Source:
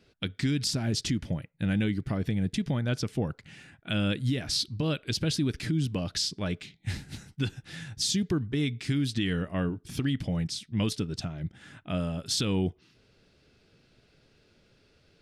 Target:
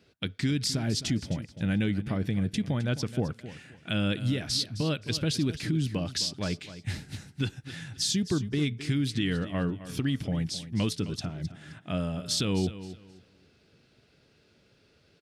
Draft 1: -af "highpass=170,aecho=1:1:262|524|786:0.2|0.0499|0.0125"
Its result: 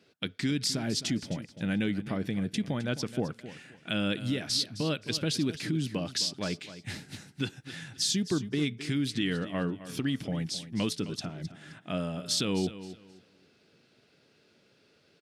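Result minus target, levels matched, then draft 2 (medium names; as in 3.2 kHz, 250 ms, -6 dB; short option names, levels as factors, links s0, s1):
125 Hz band -3.5 dB
-af "highpass=60,aecho=1:1:262|524|786:0.2|0.0499|0.0125"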